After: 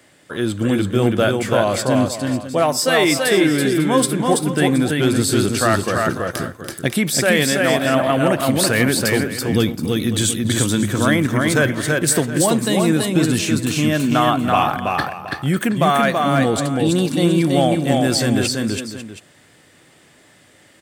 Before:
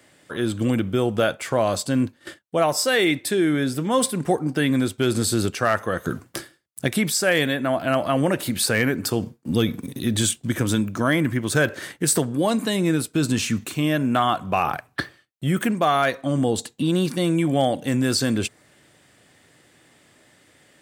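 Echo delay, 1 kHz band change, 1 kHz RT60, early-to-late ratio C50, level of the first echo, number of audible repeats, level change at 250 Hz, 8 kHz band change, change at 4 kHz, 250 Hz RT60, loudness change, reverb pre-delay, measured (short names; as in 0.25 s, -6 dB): 0.29 s, +5.0 dB, none, none, -18.0 dB, 4, +5.0 dB, +5.0 dB, +5.0 dB, none, +5.0 dB, none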